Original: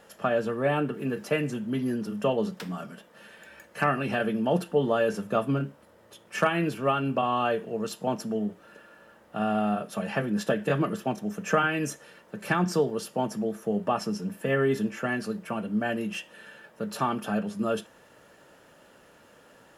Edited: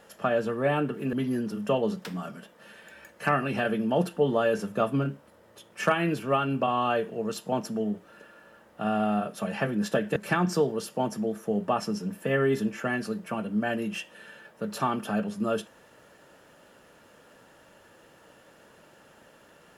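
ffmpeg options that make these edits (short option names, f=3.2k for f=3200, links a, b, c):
-filter_complex "[0:a]asplit=3[a][b][c];[a]atrim=end=1.132[d];[b]atrim=start=1.678:end=10.712[e];[c]atrim=start=12.348[f];[d][e]acrossfade=d=0.004:c1=hsin:c2=hsin[g];[g][f]acrossfade=d=0.004:c1=hsin:c2=hsin"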